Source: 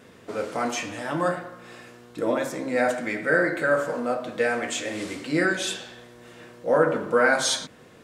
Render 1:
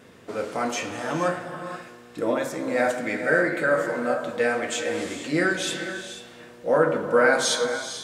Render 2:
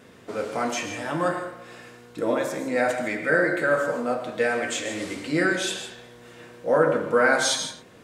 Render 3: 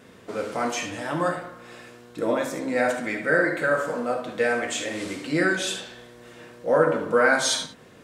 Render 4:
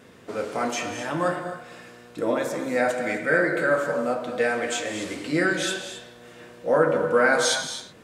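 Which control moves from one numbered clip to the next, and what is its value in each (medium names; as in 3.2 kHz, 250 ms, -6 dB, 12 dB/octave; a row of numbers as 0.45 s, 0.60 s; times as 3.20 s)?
gated-style reverb, gate: 510 ms, 180 ms, 90 ms, 280 ms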